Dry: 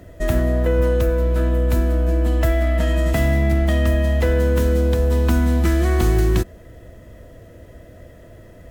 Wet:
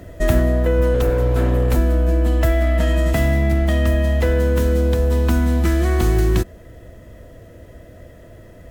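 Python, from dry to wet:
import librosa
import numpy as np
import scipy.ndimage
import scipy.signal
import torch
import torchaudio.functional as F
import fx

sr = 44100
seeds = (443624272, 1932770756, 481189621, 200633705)

y = fx.lower_of_two(x, sr, delay_ms=3.8, at=(0.94, 1.77))
y = fx.rider(y, sr, range_db=10, speed_s=0.5)
y = y * librosa.db_to_amplitude(1.0)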